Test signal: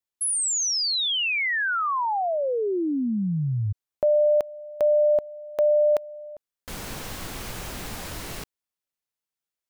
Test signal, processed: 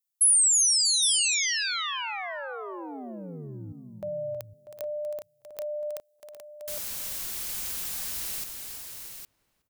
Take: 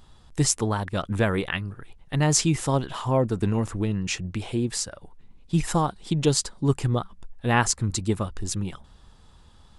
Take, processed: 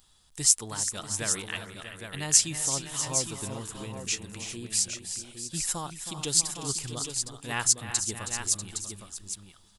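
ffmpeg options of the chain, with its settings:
-filter_complex "[0:a]asplit=2[a][b];[b]aecho=0:1:319|380|642|812:0.282|0.251|0.251|0.422[c];[a][c]amix=inputs=2:normalize=0,crystalizer=i=9:c=0,asplit=2[d][e];[e]adelay=369,lowpass=f=1.5k:p=1,volume=-20.5dB,asplit=2[f][g];[g]adelay=369,lowpass=f=1.5k:p=1,volume=0.47,asplit=2[h][i];[i]adelay=369,lowpass=f=1.5k:p=1,volume=0.47[j];[f][h][j]amix=inputs=3:normalize=0[k];[d][k]amix=inputs=2:normalize=0,volume=-16dB"

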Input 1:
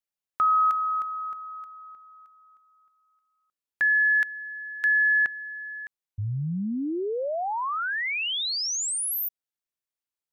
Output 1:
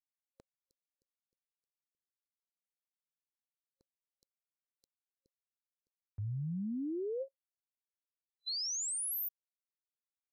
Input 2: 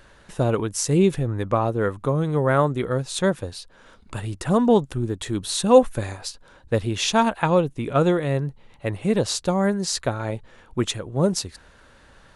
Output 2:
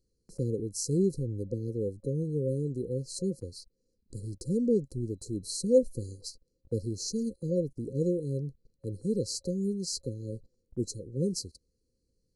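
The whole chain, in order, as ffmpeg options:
-af "afftfilt=real='re*(1-between(b*sr/4096,540,4000))':imag='im*(1-between(b*sr/4096,540,4000))':win_size=4096:overlap=0.75,agate=range=-14dB:threshold=-46dB:ratio=16:release=38:detection=rms,volume=-8.5dB"

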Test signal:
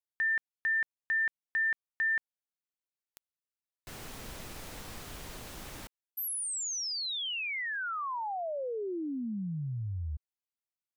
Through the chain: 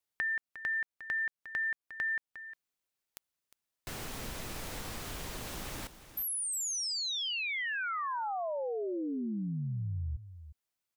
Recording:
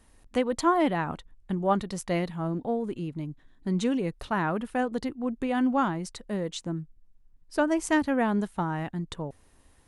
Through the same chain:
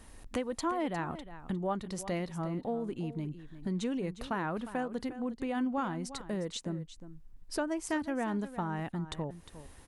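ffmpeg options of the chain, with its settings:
-filter_complex "[0:a]acompressor=threshold=-43dB:ratio=2.5:attack=6.1:release=602:detection=peak,asplit=2[a][b];[b]aecho=0:1:356:0.211[c];[a][c]amix=inputs=2:normalize=0,volume=6.5dB"

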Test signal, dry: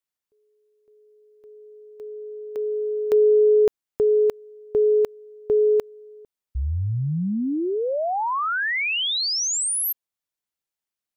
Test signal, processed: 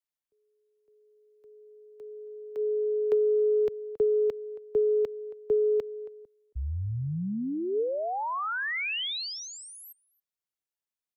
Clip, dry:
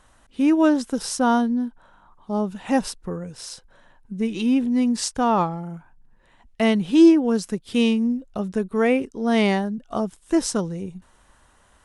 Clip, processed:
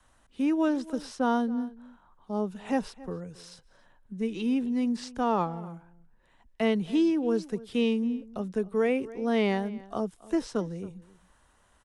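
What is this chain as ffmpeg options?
-filter_complex "[0:a]adynamicequalizer=threshold=0.02:dfrequency=440:dqfactor=5.3:tfrequency=440:tqfactor=5.3:attack=5:release=100:ratio=0.375:range=3:mode=boostabove:tftype=bell,acrossover=split=150|4400[a][b][c];[c]acompressor=threshold=-41dB:ratio=6:attack=0.11:release=66:detection=rms[d];[a][b][d]amix=inputs=3:normalize=0,asplit=2[e][f];[f]adelay=274.1,volume=-20dB,highshelf=f=4k:g=-6.17[g];[e][g]amix=inputs=2:normalize=0,acrossover=split=180|2100[h][i][j];[i]acompressor=threshold=-19dB:ratio=6:attack=76:release=100:knee=2.83:detection=peak[k];[h][k][j]amix=inputs=3:normalize=0,volume=-7dB"

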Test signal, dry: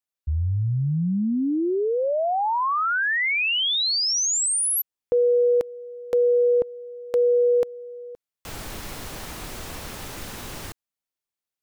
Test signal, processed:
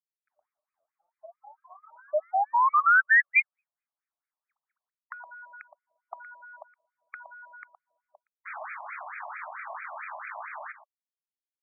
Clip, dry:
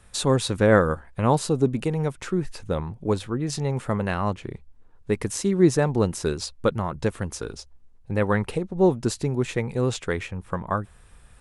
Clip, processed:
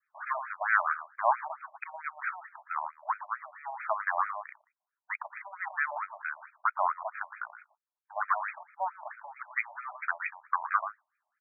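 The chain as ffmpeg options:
-filter_complex "[0:a]bandreject=f=50:t=h:w=6,bandreject=f=100:t=h:w=6,bandreject=f=150:t=h:w=6,bandreject=f=200:t=h:w=6,bandreject=f=250:t=h:w=6,bandreject=f=300:t=h:w=6,bandreject=f=350:t=h:w=6,bandreject=f=400:t=h:w=6,bandreject=f=450:t=h:w=6,agate=range=-24dB:threshold=-43dB:ratio=16:release=116:detection=peak,acrossover=split=250|520|3700[a][b][c][d];[b]alimiter=limit=-23.5dB:level=0:latency=1[e];[d]aeval=exprs='(mod(5.01*val(0)+1,2)-1)/5.01':c=same[f];[a][e][c][f]amix=inputs=4:normalize=0,acrossover=split=260|1900[g][h][i];[h]acompressor=threshold=-23dB:ratio=3:release=106:knee=2.83:detection=peak[j];[g][j][i]amix=inputs=3:normalize=0,adynamicequalizer=threshold=0.00708:dfrequency=760:dqfactor=1.4:tfrequency=760:tqfactor=1.4:attack=5:release=100:ratio=0.375:range=3:mode=cutabove:tftype=bell,aeval=exprs='0.355*(cos(1*acos(clip(val(0)/0.355,-1,1)))-cos(1*PI/2))+0.0126*(cos(4*acos(clip(val(0)/0.355,-1,1)))-cos(4*PI/2))+0.0501*(cos(5*acos(clip(val(0)/0.355,-1,1)))-cos(5*PI/2))':c=same,aecho=1:1:117:0.237,afftfilt=real='re*between(b*sr/1024,790*pow(1800/790,0.5+0.5*sin(2*PI*4.5*pts/sr))/1.41,790*pow(1800/790,0.5+0.5*sin(2*PI*4.5*pts/sr))*1.41)':imag='im*between(b*sr/1024,790*pow(1800/790,0.5+0.5*sin(2*PI*4.5*pts/sr))/1.41,790*pow(1800/790,0.5+0.5*sin(2*PI*4.5*pts/sr))*1.41)':win_size=1024:overlap=0.75,volume=2.5dB"

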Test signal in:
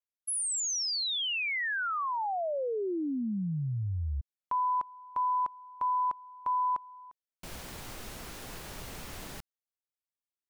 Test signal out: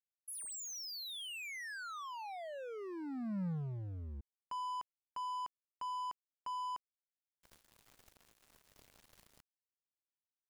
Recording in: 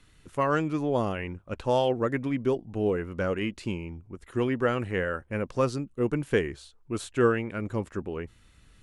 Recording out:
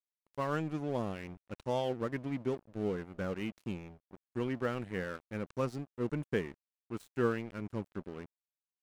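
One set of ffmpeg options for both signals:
-af "adynamicequalizer=threshold=0.00631:dfrequency=180:dqfactor=1.6:tfrequency=180:tqfactor=1.6:attack=5:release=100:ratio=0.375:range=3:mode=boostabove:tftype=bell,aeval=exprs='sgn(val(0))*max(abs(val(0))-0.0126,0)':c=same,volume=-8.5dB"

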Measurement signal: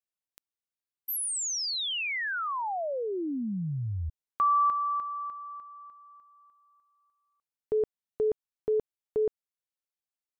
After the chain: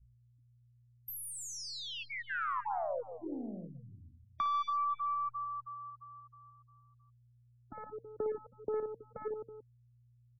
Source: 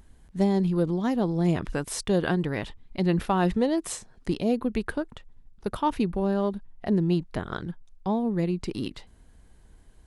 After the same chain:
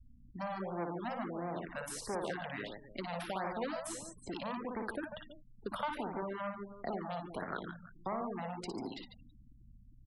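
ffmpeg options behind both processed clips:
-filter_complex "[0:a]aeval=exprs='0.299*(cos(1*acos(clip(val(0)/0.299,-1,1)))-cos(1*PI/2))+0.0106*(cos(2*acos(clip(val(0)/0.299,-1,1)))-cos(2*PI/2))':c=same,adynamicequalizer=threshold=0.0141:dfrequency=190:dqfactor=1:tfrequency=190:tqfactor=1:attack=5:release=100:ratio=0.417:range=3:mode=boostabove:tftype=bell,aeval=exprs='(tanh(14.1*val(0)+0.25)-tanh(0.25))/14.1':c=same,acrossover=split=450|1300[a][b][c];[a]acompressor=threshold=-43dB:ratio=6:attack=34:release=335:detection=peak[d];[d][b][c]amix=inputs=3:normalize=0,aeval=exprs='val(0)+0.00126*(sin(2*PI*60*n/s)+sin(2*PI*2*60*n/s)/2+sin(2*PI*3*60*n/s)/3+sin(2*PI*4*60*n/s)/4+sin(2*PI*5*60*n/s)/5)':c=same,bandreject=f=152.9:t=h:w=4,bandreject=f=305.8:t=h:w=4,bandreject=f=458.7:t=h:w=4,bandreject=f=611.6:t=h:w=4,bandreject=f=764.5:t=h:w=4,bandreject=f=917.4:t=h:w=4,bandreject=f=1.0703k:t=h:w=4,bandreject=f=1.2232k:t=h:w=4,bandreject=f=1.3761k:t=h:w=4,bandreject=f=1.529k:t=h:w=4,bandreject=f=1.6819k:t=h:w=4,bandreject=f=1.8348k:t=h:w=4,bandreject=f=1.9877k:t=h:w=4,asplit=2[e][f];[f]aecho=0:1:58|144|324:0.562|0.376|0.141[g];[e][g]amix=inputs=2:normalize=0,afftfilt=real='re*gte(hypot(re,im),0.00501)':imag='im*gte(hypot(re,im),0.00501)':win_size=1024:overlap=0.75,acrossover=split=190|1500[h][i][j];[h]acompressor=threshold=-53dB:ratio=8[k];[i]acompressor=threshold=-31dB:ratio=8[l];[j]acompressor=threshold=-44dB:ratio=3[m];[k][l][m]amix=inputs=3:normalize=0,afftfilt=real='re*(1-between(b*sr/1024,320*pow(3500/320,0.5+0.5*sin(2*PI*1.5*pts/sr))/1.41,320*pow(3500/320,0.5+0.5*sin(2*PI*1.5*pts/sr))*1.41))':imag='im*(1-between(b*sr/1024,320*pow(3500/320,0.5+0.5*sin(2*PI*1.5*pts/sr))/1.41,320*pow(3500/320,0.5+0.5*sin(2*PI*1.5*pts/sr))*1.41))':win_size=1024:overlap=0.75,volume=-1.5dB"

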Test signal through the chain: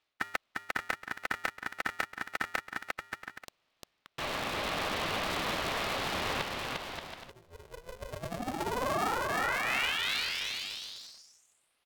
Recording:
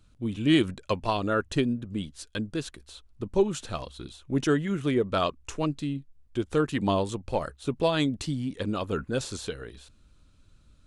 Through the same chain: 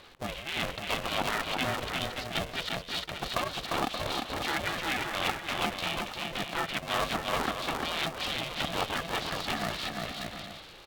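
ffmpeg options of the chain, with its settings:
-filter_complex "[0:a]afftfilt=real='re*lt(hypot(re,im),0.126)':imag='im*lt(hypot(re,im),0.126)':win_size=1024:overlap=0.75,highshelf=f=2.1k:g=7,areverse,acompressor=threshold=-45dB:ratio=16,areverse,aecho=1:1:350|577.5|725.4|821.5|884:0.631|0.398|0.251|0.158|0.1,asplit=2[a][b];[b]aeval=exprs='0.141*sin(PI/2*6.31*val(0)/0.141)':c=same,volume=-6dB[c];[a][c]amix=inputs=2:normalize=0,highpass=410,equalizer=f=890:t=q:w=4:g=4,equalizer=f=1.3k:t=q:w=4:g=-8,equalizer=f=2k:t=q:w=4:g=-5,equalizer=f=3k:t=q:w=4:g=-4,lowpass=f=3.3k:w=0.5412,lowpass=f=3.3k:w=1.3066,aeval=exprs='val(0)*sgn(sin(2*PI*250*n/s))':c=same,volume=5.5dB"

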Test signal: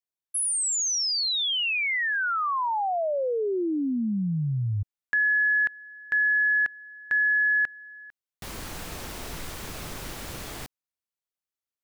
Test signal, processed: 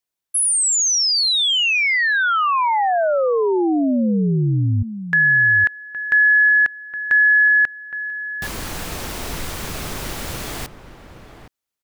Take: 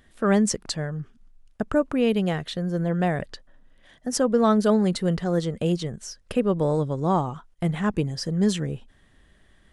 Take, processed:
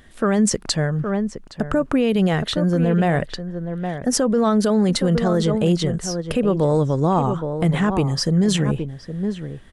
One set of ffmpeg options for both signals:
-filter_complex "[0:a]asplit=2[a][b];[b]adelay=816.3,volume=-11dB,highshelf=f=4k:g=-18.4[c];[a][c]amix=inputs=2:normalize=0,alimiter=limit=-18.5dB:level=0:latency=1:release=36,volume=8.5dB"

